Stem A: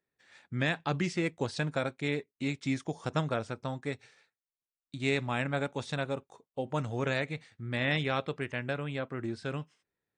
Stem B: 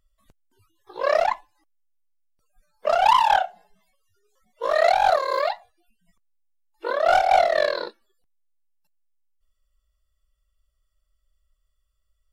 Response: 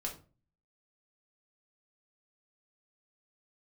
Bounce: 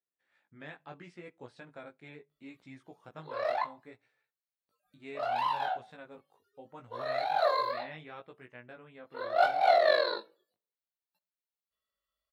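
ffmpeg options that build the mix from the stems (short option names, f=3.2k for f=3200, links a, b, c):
-filter_complex "[0:a]volume=-10dB,asplit=3[a][b][c];[b]volume=-22.5dB[d];[1:a]highpass=130,equalizer=f=4.1k:t=o:w=0.39:g=11,adelay=2300,volume=0dB,asplit=2[e][f];[f]volume=-13.5dB[g];[c]apad=whole_len=644793[h];[e][h]sidechaincompress=threshold=-55dB:ratio=8:attack=16:release=120[i];[2:a]atrim=start_sample=2205[j];[d][g]amix=inputs=2:normalize=0[k];[k][j]afir=irnorm=-1:irlink=0[l];[a][i][l]amix=inputs=3:normalize=0,lowshelf=f=230:g=-11,flanger=delay=16:depth=3.6:speed=0.71,equalizer=f=6.4k:w=0.68:g=-14"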